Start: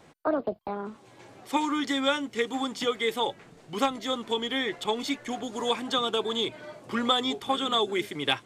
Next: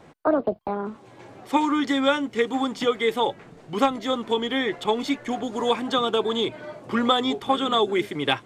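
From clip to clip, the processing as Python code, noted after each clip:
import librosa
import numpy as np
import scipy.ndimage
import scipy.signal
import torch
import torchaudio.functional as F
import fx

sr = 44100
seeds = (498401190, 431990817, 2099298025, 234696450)

y = fx.high_shelf(x, sr, hz=2700.0, db=-8.5)
y = F.gain(torch.from_numpy(y), 6.0).numpy()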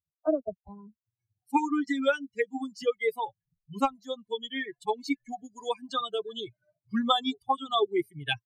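y = fx.bin_expand(x, sr, power=3.0)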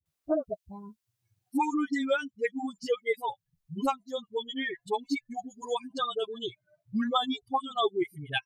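y = fx.dispersion(x, sr, late='highs', ms=58.0, hz=420.0)
y = fx.band_squash(y, sr, depth_pct=40)
y = F.gain(torch.from_numpy(y), -1.0).numpy()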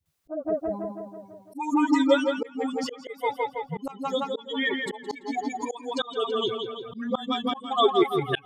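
y = fx.spec_box(x, sr, start_s=1.96, length_s=0.69, low_hz=1200.0, high_hz=2600.0, gain_db=-6)
y = fx.echo_tape(y, sr, ms=166, feedback_pct=63, wet_db=-5, lp_hz=4600.0, drive_db=15.0, wow_cents=34)
y = fx.auto_swell(y, sr, attack_ms=304.0)
y = F.gain(torch.from_numpy(y), 7.0).numpy()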